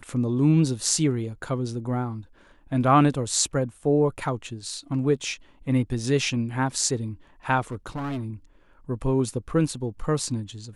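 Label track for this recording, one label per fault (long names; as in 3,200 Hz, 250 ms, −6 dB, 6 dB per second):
7.670000	8.250000	clipping −27 dBFS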